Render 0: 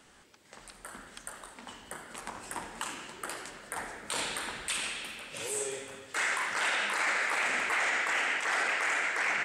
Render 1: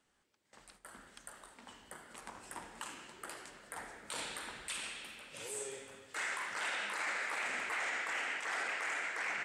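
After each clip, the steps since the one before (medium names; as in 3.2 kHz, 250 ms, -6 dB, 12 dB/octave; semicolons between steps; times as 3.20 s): gate -52 dBFS, range -10 dB; trim -8 dB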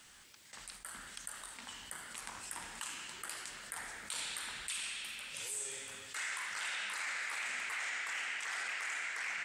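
amplifier tone stack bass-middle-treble 5-5-5; level flattener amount 50%; trim +7.5 dB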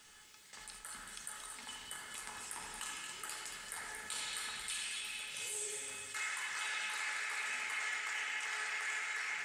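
feedback comb 430 Hz, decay 0.2 s, harmonics all, mix 80%; two-band feedback delay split 2 kHz, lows 86 ms, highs 228 ms, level -7 dB; trim +9.5 dB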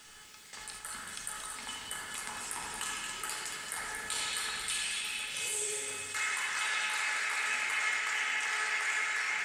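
reverberation RT60 2.3 s, pre-delay 6 ms, DRR 7 dB; trim +6 dB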